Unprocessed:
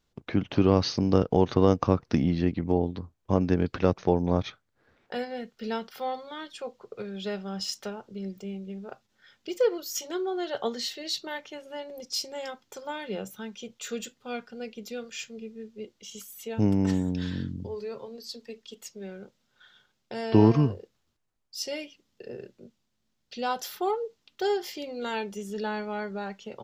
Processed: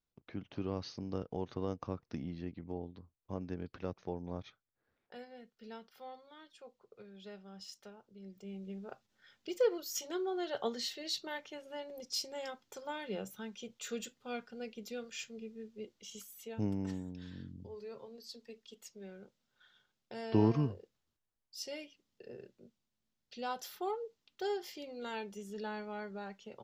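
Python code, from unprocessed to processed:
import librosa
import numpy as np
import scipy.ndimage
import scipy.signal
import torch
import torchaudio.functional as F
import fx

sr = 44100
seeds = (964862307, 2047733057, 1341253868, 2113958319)

y = fx.gain(x, sr, db=fx.line((8.17, -17.0), (8.65, -6.0), (16.13, -6.0), (17.19, -17.0), (17.98, -9.5)))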